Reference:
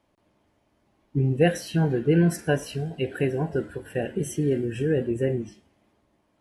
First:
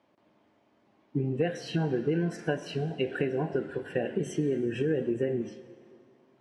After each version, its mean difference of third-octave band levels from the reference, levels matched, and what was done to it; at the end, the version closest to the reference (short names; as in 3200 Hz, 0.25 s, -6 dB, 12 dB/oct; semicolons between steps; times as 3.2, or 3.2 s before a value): 4.0 dB: HPF 170 Hz 12 dB/oct; compressor 6:1, threshold -27 dBFS, peak gain reduction 12 dB; air absorption 110 m; plate-style reverb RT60 2.3 s, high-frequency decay 0.95×, DRR 14 dB; gain +2.5 dB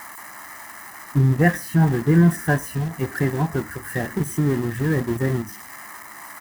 8.5 dB: switching spikes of -18.5 dBFS; resonant high shelf 2300 Hz -12 dB, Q 3; comb 1 ms, depth 63%; in parallel at -7.5 dB: sample gate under -25.5 dBFS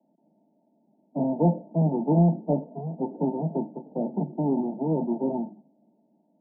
11.5 dB: half-waves squared off; steep high-pass 150 Hz 96 dB/oct; soft clip -5 dBFS, distortion -24 dB; rippled Chebyshev low-pass 920 Hz, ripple 9 dB; gain +1.5 dB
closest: first